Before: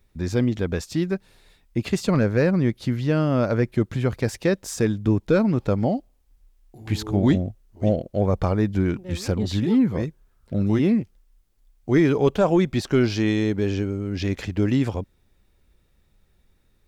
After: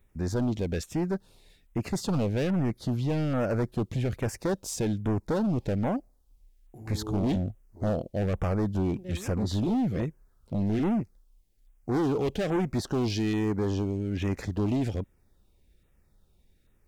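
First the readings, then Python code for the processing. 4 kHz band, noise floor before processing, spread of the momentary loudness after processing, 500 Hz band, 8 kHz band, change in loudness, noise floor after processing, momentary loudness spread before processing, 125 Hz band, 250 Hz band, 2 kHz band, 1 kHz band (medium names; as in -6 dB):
-5.5 dB, -63 dBFS, 7 LU, -7.5 dB, -3.0 dB, -6.5 dB, -65 dBFS, 9 LU, -5.5 dB, -6.5 dB, -9.0 dB, -4.5 dB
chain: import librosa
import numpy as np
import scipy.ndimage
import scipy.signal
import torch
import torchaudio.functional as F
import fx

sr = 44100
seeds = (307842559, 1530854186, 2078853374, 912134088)

y = np.clip(10.0 ** (21.5 / 20.0) * x, -1.0, 1.0) / 10.0 ** (21.5 / 20.0)
y = fx.filter_lfo_notch(y, sr, shape='saw_down', hz=1.2, low_hz=870.0, high_hz=5200.0, q=0.97)
y = y * 10.0 ** (-2.0 / 20.0)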